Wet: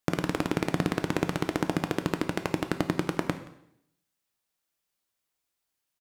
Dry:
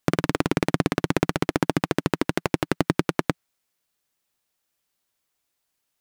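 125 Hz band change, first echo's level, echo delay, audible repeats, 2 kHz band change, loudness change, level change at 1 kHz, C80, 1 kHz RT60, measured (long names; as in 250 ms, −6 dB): −5.0 dB, −22.0 dB, 175 ms, 1, −5.0 dB, −5.0 dB, −5.0 dB, 13.5 dB, 0.70 s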